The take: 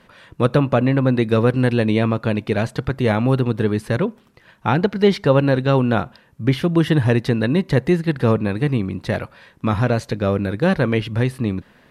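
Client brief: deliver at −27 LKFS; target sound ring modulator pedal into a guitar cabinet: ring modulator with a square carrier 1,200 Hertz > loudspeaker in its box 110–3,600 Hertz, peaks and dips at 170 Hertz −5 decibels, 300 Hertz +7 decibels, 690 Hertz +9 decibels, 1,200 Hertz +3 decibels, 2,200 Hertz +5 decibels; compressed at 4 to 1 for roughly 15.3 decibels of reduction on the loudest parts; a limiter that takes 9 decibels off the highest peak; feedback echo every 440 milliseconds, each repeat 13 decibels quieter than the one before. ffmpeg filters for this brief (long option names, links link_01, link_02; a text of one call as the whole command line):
ffmpeg -i in.wav -af "acompressor=threshold=-30dB:ratio=4,alimiter=level_in=0.5dB:limit=-24dB:level=0:latency=1,volume=-0.5dB,aecho=1:1:440|880|1320:0.224|0.0493|0.0108,aeval=exprs='val(0)*sgn(sin(2*PI*1200*n/s))':channel_layout=same,highpass=110,equalizer=frequency=170:width_type=q:width=4:gain=-5,equalizer=frequency=300:width_type=q:width=4:gain=7,equalizer=frequency=690:width_type=q:width=4:gain=9,equalizer=frequency=1200:width_type=q:width=4:gain=3,equalizer=frequency=2200:width_type=q:width=4:gain=5,lowpass=frequency=3600:width=0.5412,lowpass=frequency=3600:width=1.3066,volume=4dB" out.wav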